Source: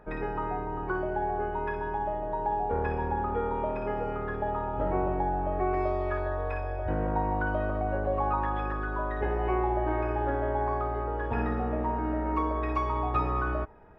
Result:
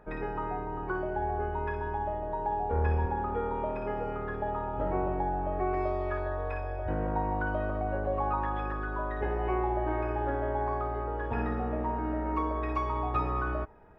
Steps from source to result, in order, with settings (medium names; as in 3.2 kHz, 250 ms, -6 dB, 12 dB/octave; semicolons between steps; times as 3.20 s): 1.16–3.06 s: peaking EQ 77 Hz +10.5 dB 0.24 oct; trim -2 dB